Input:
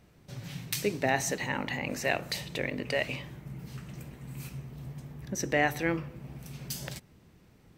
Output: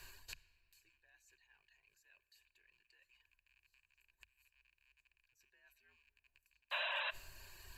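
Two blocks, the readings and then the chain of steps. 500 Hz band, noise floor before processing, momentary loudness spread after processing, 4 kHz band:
−24.5 dB, −60 dBFS, 18 LU, −9.5 dB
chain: loose part that buzzes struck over −40 dBFS, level −26 dBFS
guitar amp tone stack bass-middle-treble 10-0-10
notch comb filter 700 Hz
reversed playback
downward compressor 8 to 1, threshold −52 dBFS, peak gain reduction 22 dB
reversed playback
frequency shifter −88 Hz
gate with flip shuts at −51 dBFS, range −33 dB
sound drawn into the spectrogram noise, 0:06.71–0:07.11, 500–4,000 Hz −54 dBFS
reverb reduction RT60 0.58 s
EQ curve with evenly spaced ripples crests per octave 1.4, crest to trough 12 dB
rectangular room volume 3,200 cubic metres, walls mixed, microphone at 0.35 metres
level +14.5 dB

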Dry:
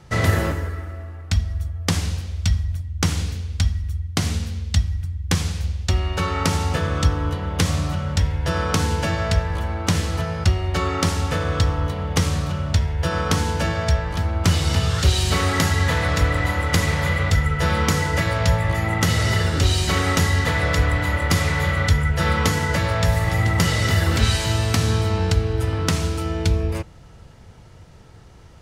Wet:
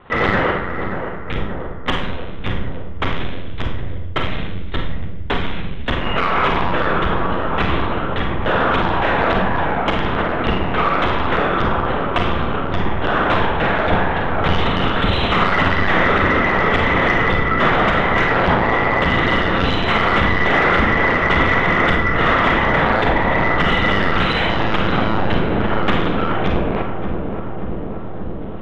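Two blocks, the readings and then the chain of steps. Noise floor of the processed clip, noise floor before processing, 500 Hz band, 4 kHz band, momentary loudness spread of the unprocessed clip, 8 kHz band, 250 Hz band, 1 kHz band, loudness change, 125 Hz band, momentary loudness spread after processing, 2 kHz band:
−24 dBFS, −44 dBFS, +7.5 dB, +1.5 dB, 6 LU, below −20 dB, +5.0 dB, +9.5 dB, +3.5 dB, −4.0 dB, 12 LU, +8.0 dB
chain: stylus tracing distortion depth 0.046 ms
dynamic equaliser 310 Hz, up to −6 dB, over −38 dBFS, Q 1.8
linear-prediction vocoder at 8 kHz pitch kept
mid-hump overdrive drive 18 dB, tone 1,500 Hz, clips at −1.5 dBFS
feedback echo with a low-pass in the loop 579 ms, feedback 81%, low-pass 1,200 Hz, level −7 dB
four-comb reverb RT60 0.46 s, combs from 33 ms, DRR 3 dB
level −1 dB

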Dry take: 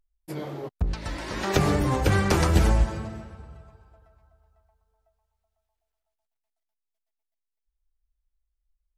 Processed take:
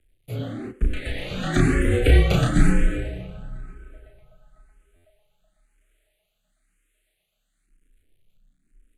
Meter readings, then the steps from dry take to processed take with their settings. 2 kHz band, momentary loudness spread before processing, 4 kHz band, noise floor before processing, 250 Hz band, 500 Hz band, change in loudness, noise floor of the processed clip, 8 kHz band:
+3.0 dB, 17 LU, +1.0 dB, −84 dBFS, +4.0 dB, +1.5 dB, +2.5 dB, −74 dBFS, −2.5 dB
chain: mu-law and A-law mismatch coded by mu
frequency shifter −34 Hz
low-pass filter 11,000 Hz 24 dB per octave
phaser with its sweep stopped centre 2,300 Hz, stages 4
double-tracking delay 33 ms −2.5 dB
far-end echo of a speakerphone 90 ms, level −16 dB
buffer that repeats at 0:04.95, samples 512, times 7
frequency shifter mixed with the dry sound +1 Hz
level +6.5 dB

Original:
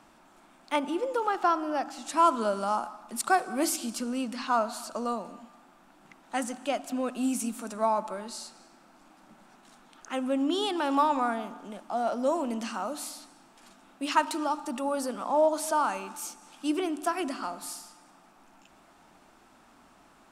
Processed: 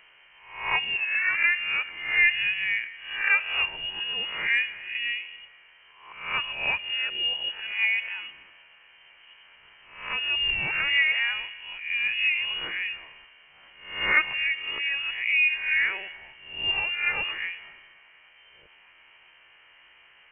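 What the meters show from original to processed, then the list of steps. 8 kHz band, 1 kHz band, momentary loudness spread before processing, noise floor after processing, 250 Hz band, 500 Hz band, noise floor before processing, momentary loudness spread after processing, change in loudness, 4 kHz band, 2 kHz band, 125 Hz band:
below −40 dB, −11.5 dB, 13 LU, −56 dBFS, −22.5 dB, −17.5 dB, −59 dBFS, 13 LU, +5.0 dB, +13.0 dB, +16.0 dB, can't be measured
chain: peak hold with a rise ahead of every peak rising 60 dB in 0.61 s
voice inversion scrambler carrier 3,100 Hz
graphic EQ with 15 bands 100 Hz −5 dB, 250 Hz −9 dB, 1,000 Hz +6 dB

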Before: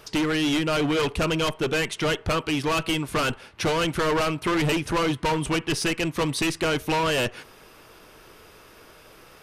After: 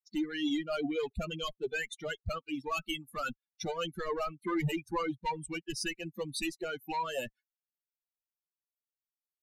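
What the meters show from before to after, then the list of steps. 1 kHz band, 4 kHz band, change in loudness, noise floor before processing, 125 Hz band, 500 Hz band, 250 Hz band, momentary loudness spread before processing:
−10.0 dB, −12.5 dB, −11.5 dB, −51 dBFS, −13.5 dB, −11.5 dB, −10.5 dB, 3 LU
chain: spectral dynamics exaggerated over time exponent 3
level −3.5 dB

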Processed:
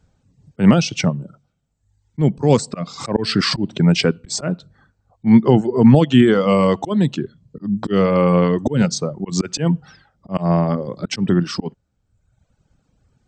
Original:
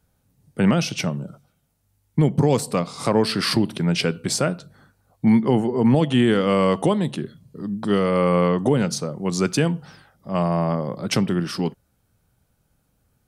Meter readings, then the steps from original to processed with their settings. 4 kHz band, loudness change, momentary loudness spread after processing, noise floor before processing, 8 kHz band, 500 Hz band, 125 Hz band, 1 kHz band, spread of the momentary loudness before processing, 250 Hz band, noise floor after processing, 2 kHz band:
+2.5 dB, +4.0 dB, 15 LU, −68 dBFS, +1.5 dB, +2.5 dB, +4.5 dB, +1.5 dB, 10 LU, +4.5 dB, −69 dBFS, +2.0 dB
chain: volume swells 129 ms
low-shelf EQ 400 Hz +5 dB
reverb reduction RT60 1 s
linear-phase brick-wall low-pass 8,300 Hz
level +4 dB

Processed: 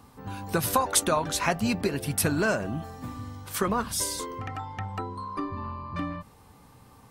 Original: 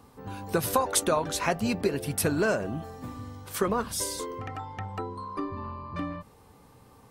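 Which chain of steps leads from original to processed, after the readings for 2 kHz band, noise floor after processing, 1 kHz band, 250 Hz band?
+2.5 dB, −54 dBFS, +1.5 dB, +1.0 dB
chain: parametric band 450 Hz −5.5 dB 0.9 octaves
level +2.5 dB

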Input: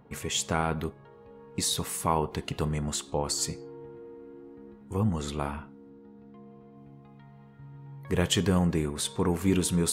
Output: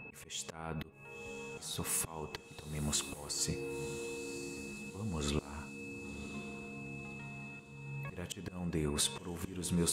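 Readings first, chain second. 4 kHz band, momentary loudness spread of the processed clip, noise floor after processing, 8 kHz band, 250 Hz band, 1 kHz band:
−7.5 dB, 11 LU, −54 dBFS, −5.5 dB, −10.0 dB, −14.0 dB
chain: steady tone 2,600 Hz −51 dBFS
downward compressor 4 to 1, threshold −31 dBFS, peak gain reduction 10.5 dB
volume swells 402 ms
feedback delay with all-pass diffusion 1,048 ms, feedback 46%, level −12 dB
level +2.5 dB

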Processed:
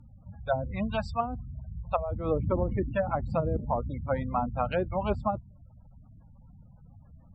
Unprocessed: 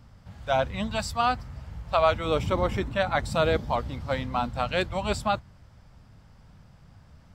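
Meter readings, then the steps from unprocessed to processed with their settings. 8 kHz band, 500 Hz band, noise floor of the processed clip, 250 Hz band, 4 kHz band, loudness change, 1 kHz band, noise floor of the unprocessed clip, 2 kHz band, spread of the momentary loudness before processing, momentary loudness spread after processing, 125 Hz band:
below −20 dB, −3.5 dB, −55 dBFS, −0.5 dB, −15.5 dB, −4.0 dB, −5.0 dB, −54 dBFS, −9.5 dB, 8 LU, 8 LU, 0.0 dB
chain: gate on every frequency bin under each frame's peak −20 dB strong
treble cut that deepens with the level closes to 320 Hz, closed at −19.5 dBFS

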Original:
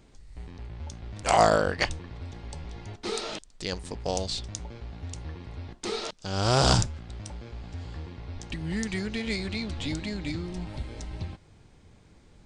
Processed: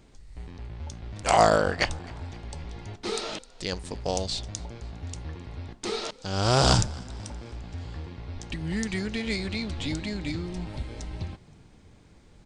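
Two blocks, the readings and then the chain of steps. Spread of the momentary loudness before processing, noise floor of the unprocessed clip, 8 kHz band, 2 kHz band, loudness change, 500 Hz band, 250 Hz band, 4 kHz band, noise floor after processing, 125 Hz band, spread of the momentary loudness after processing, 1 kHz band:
19 LU, −56 dBFS, +1.0 dB, +1.0 dB, +1.0 dB, +1.0 dB, +1.0 dB, +1.0 dB, −54 dBFS, +1.0 dB, 18 LU, +1.0 dB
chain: echo with shifted repeats 261 ms, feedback 54%, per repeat +64 Hz, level −24 dB
level +1 dB

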